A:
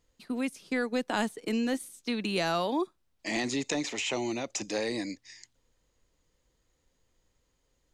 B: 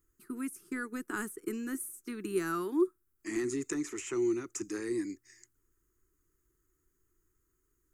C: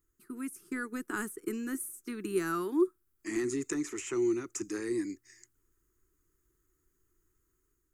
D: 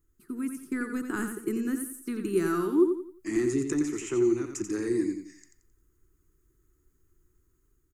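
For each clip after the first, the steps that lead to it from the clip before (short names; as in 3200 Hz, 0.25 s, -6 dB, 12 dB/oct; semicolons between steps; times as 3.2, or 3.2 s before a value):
EQ curve 120 Hz 0 dB, 230 Hz -6 dB, 370 Hz +10 dB, 560 Hz -23 dB, 820 Hz -16 dB, 1300 Hz +5 dB, 2300 Hz -9 dB, 3800 Hz -18 dB, 7700 Hz +3 dB, 13000 Hz +13 dB; gain -3.5 dB
AGC gain up to 4 dB; gain -3 dB
low shelf 360 Hz +9 dB; feedback echo 88 ms, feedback 34%, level -7 dB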